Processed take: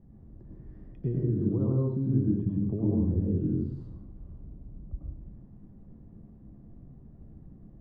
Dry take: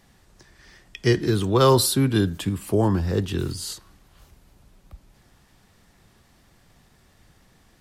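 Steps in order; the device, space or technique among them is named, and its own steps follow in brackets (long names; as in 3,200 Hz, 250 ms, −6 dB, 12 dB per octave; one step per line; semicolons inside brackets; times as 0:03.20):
television next door (downward compressor 4 to 1, threshold −34 dBFS, peak gain reduction 18.5 dB; low-pass filter 260 Hz 12 dB per octave; convolution reverb RT60 0.65 s, pre-delay 93 ms, DRR −3.5 dB)
0:01.72–0:03.50: high-frequency loss of the air 200 metres
level +6 dB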